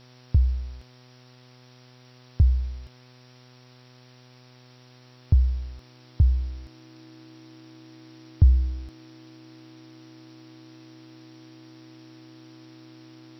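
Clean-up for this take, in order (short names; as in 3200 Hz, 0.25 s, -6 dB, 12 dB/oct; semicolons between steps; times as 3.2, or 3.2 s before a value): de-hum 125.3 Hz, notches 21; notch 320 Hz, Q 30; noise print and reduce 19 dB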